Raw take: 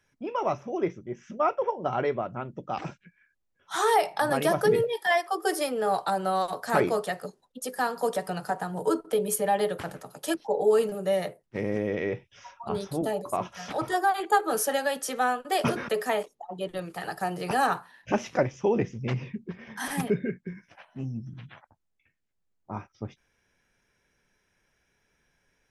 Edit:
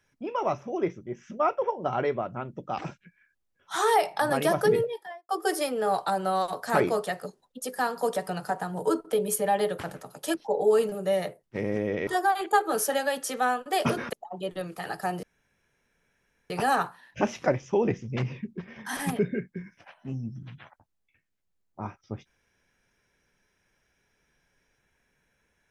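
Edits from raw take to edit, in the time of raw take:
0:04.67–0:05.29: fade out and dull
0:12.07–0:13.86: remove
0:15.92–0:16.31: remove
0:17.41: splice in room tone 1.27 s

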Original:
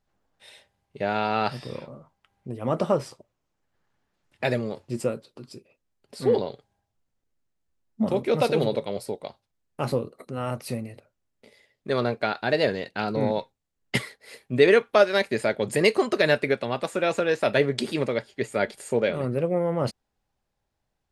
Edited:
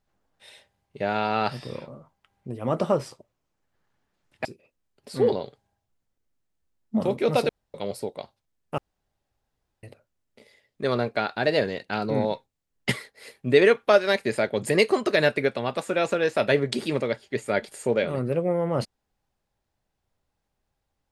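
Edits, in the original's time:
0:04.45–0:05.51: remove
0:08.55–0:08.80: fill with room tone
0:09.84–0:10.89: fill with room tone

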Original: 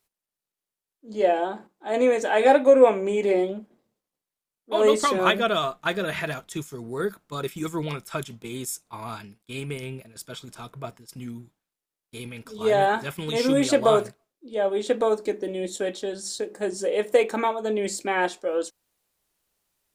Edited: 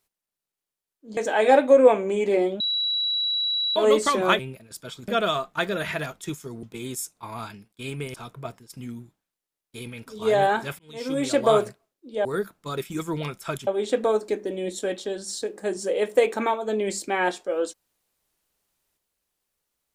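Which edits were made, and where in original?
0:01.17–0:02.14: remove
0:03.57–0:04.73: beep over 3,910 Hz −22 dBFS
0:06.91–0:08.33: move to 0:14.64
0:09.84–0:10.53: move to 0:05.36
0:13.18–0:13.88: fade in

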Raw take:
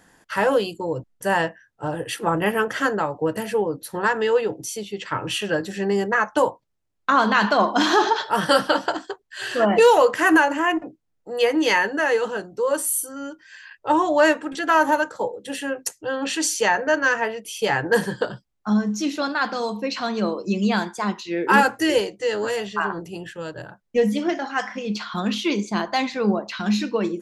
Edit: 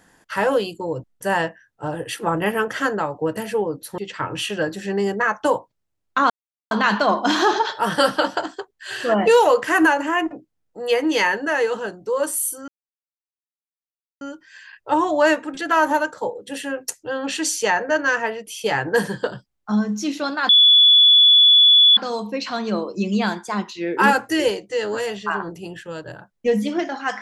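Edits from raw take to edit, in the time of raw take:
0:03.98–0:04.90: remove
0:07.22: splice in silence 0.41 s
0:13.19: splice in silence 1.53 s
0:19.47: insert tone 3,430 Hz −8.5 dBFS 1.48 s

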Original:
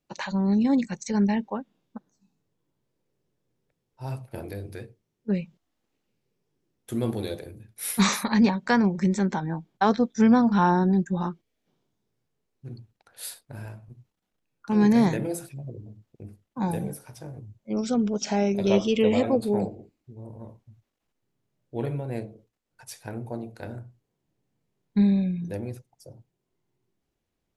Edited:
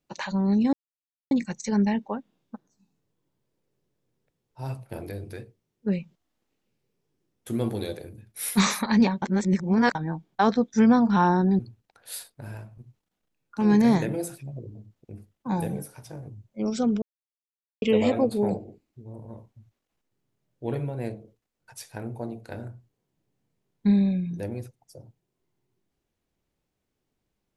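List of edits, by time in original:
0:00.73: splice in silence 0.58 s
0:08.64–0:09.37: reverse
0:11.01–0:12.70: remove
0:18.13–0:18.93: silence

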